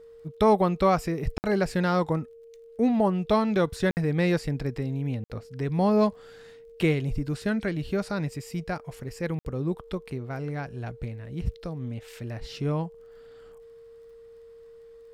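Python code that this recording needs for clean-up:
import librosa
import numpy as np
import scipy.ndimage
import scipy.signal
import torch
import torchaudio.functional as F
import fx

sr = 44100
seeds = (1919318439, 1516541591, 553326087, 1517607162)

y = fx.fix_declick_ar(x, sr, threshold=6.5)
y = fx.notch(y, sr, hz=460.0, q=30.0)
y = fx.fix_interpolate(y, sr, at_s=(1.38, 3.91, 5.24, 9.39), length_ms=59.0)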